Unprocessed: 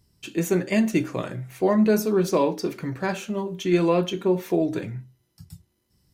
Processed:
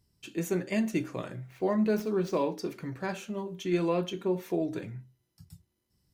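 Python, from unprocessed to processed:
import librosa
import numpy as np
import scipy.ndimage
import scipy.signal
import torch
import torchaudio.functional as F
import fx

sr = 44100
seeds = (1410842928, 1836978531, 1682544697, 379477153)

y = fx.median_filter(x, sr, points=5, at=(1.39, 2.46))
y = y * librosa.db_to_amplitude(-7.5)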